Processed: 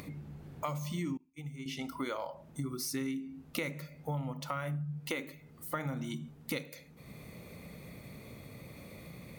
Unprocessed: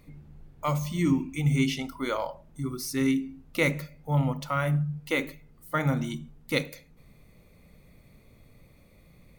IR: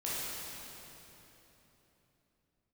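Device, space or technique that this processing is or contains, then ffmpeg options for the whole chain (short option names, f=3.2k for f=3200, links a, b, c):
upward and downward compression: -filter_complex "[0:a]highpass=100,acompressor=mode=upward:threshold=-45dB:ratio=2.5,acompressor=threshold=-38dB:ratio=8,asettb=1/sr,asplit=3[a][b][c];[a]atrim=end=1.174[d];[b]atrim=start=1.17:end=1.66,asetpts=PTS-STARTPTS,afade=t=in:d=0.004:c=qsin,afade=t=out:st=0.486:d=0.004:c=qsin,agate=range=-33dB:threshold=-32dB:ratio=3:detection=peak[e];[c]atrim=start=1.656[f];[d][e]acrossfade=d=0.004:c1=hsin:c2=qsin[g];[g][f]acrossfade=d=0.004:c1=qsin:c2=hsin,volume=4dB"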